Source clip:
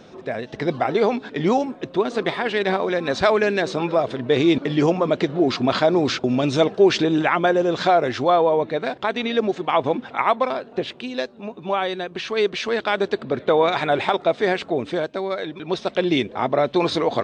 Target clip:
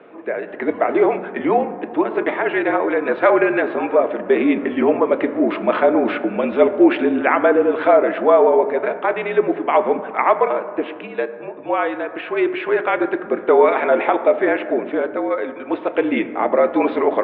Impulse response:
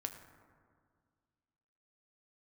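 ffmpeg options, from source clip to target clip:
-filter_complex "[0:a]asplit=2[link_01][link_02];[1:a]atrim=start_sample=2205,lowshelf=frequency=270:gain=9.5[link_03];[link_02][link_03]afir=irnorm=-1:irlink=0,volume=5.5dB[link_04];[link_01][link_04]amix=inputs=2:normalize=0,highpass=frequency=370:width_type=q:width=0.5412,highpass=frequency=370:width_type=q:width=1.307,lowpass=frequency=2600:width_type=q:width=0.5176,lowpass=frequency=2600:width_type=q:width=0.7071,lowpass=frequency=2600:width_type=q:width=1.932,afreqshift=-51,volume=-4.5dB"

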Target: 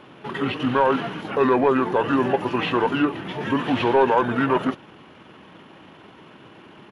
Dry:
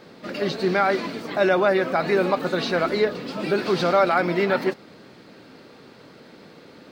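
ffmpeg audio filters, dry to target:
ffmpeg -i in.wav -filter_complex "[0:a]asplit=2[link_01][link_02];[link_02]highpass=frequency=720:poles=1,volume=9dB,asoftclip=type=tanh:threshold=-6.5dB[link_03];[link_01][link_03]amix=inputs=2:normalize=0,lowpass=frequency=4800:poles=1,volume=-6dB,asetrate=30296,aresample=44100,atempo=1.45565" out.wav

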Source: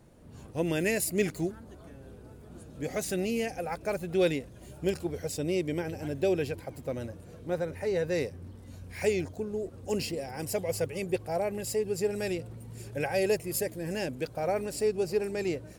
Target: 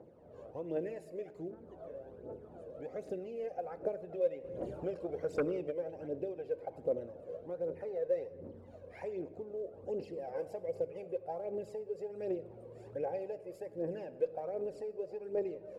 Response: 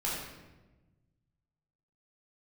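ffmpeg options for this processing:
-filter_complex "[0:a]acompressor=threshold=-39dB:ratio=6,bandpass=frequency=520:width_type=q:width=2.5:csg=0,aphaser=in_gain=1:out_gain=1:delay=2:decay=0.62:speed=1.3:type=triangular,asplit=2[link_01][link_02];[1:a]atrim=start_sample=2205[link_03];[link_02][link_03]afir=irnorm=-1:irlink=0,volume=-17.5dB[link_04];[link_01][link_04]amix=inputs=2:normalize=0,asplit=3[link_05][link_06][link_07];[link_05]afade=type=out:start_time=4.44:duration=0.02[link_08];[link_06]aeval=exprs='0.0398*(cos(1*acos(clip(val(0)/0.0398,-1,1)))-cos(1*PI/2))+0.01*(cos(5*acos(clip(val(0)/0.0398,-1,1)))-cos(5*PI/2))':channel_layout=same,afade=type=in:start_time=4.44:duration=0.02,afade=type=out:start_time=5.7:duration=0.02[link_09];[link_07]afade=type=in:start_time=5.7:duration=0.02[link_10];[link_08][link_09][link_10]amix=inputs=3:normalize=0,volume=5.5dB"

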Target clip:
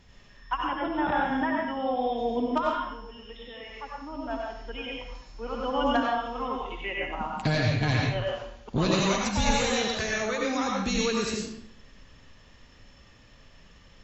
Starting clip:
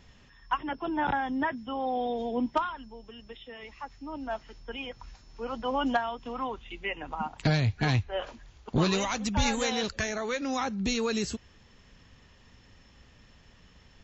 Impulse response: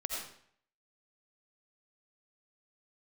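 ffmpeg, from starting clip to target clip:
-filter_complex "[1:a]atrim=start_sample=2205,asetrate=40131,aresample=44100[link_01];[0:a][link_01]afir=irnorm=-1:irlink=0"

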